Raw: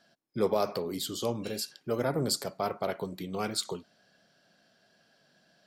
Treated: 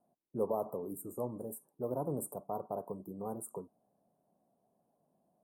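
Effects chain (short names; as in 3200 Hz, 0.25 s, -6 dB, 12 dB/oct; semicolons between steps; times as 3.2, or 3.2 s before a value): dynamic EQ 5200 Hz, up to +6 dB, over -47 dBFS, Q 0.71; Chebyshev band-stop 1000–8900 Hz, order 4; speed mistake 24 fps film run at 25 fps; gain -6 dB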